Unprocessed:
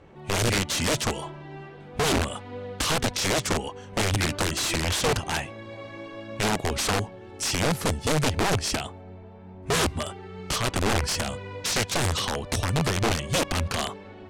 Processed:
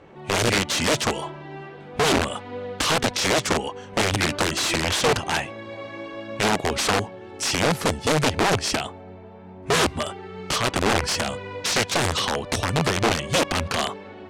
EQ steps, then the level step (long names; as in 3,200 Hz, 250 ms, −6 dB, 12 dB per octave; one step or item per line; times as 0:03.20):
low-shelf EQ 110 Hz −11.5 dB
high-shelf EQ 7,800 Hz −7.5 dB
+5.0 dB